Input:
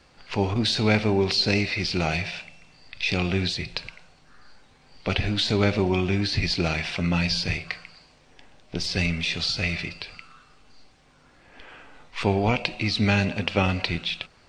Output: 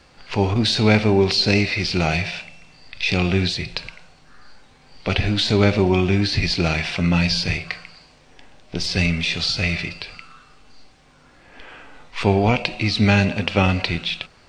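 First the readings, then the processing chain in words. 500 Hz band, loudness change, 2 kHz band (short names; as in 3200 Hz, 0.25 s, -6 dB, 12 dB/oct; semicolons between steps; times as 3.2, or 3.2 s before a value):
+5.0 dB, +5.0 dB, +4.5 dB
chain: harmonic-percussive split percussive -3 dB; gain +6 dB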